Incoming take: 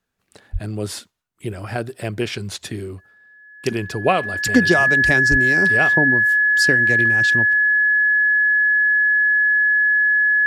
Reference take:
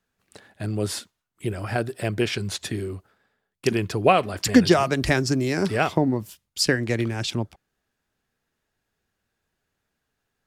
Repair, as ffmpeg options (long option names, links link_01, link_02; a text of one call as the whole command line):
ffmpeg -i in.wav -filter_complex "[0:a]bandreject=frequency=1700:width=30,asplit=3[link_01][link_02][link_03];[link_01]afade=type=out:start_time=0.52:duration=0.02[link_04];[link_02]highpass=frequency=140:width=0.5412,highpass=frequency=140:width=1.3066,afade=type=in:start_time=0.52:duration=0.02,afade=type=out:start_time=0.64:duration=0.02[link_05];[link_03]afade=type=in:start_time=0.64:duration=0.02[link_06];[link_04][link_05][link_06]amix=inputs=3:normalize=0,asplit=3[link_07][link_08][link_09];[link_07]afade=type=out:start_time=5.3:duration=0.02[link_10];[link_08]highpass=frequency=140:width=0.5412,highpass=frequency=140:width=1.3066,afade=type=in:start_time=5.3:duration=0.02,afade=type=out:start_time=5.42:duration=0.02[link_11];[link_09]afade=type=in:start_time=5.42:duration=0.02[link_12];[link_10][link_11][link_12]amix=inputs=3:normalize=0" out.wav